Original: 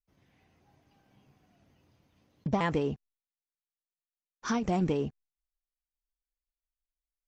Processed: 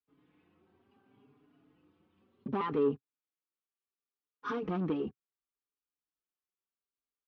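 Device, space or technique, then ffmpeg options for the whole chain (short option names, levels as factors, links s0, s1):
barber-pole flanger into a guitar amplifier: -filter_complex "[0:a]asplit=2[s0][s1];[s1]adelay=4.4,afreqshift=0.69[s2];[s0][s2]amix=inputs=2:normalize=1,asoftclip=type=tanh:threshold=0.0335,highpass=110,equalizer=f=130:t=q:w=4:g=-4,equalizer=f=280:t=q:w=4:g=8,equalizer=f=410:t=q:w=4:g=9,equalizer=f=630:t=q:w=4:g=-8,equalizer=f=1200:t=q:w=4:g=7,equalizer=f=2000:t=q:w=4:g=-5,lowpass=f=3400:w=0.5412,lowpass=f=3400:w=1.3066"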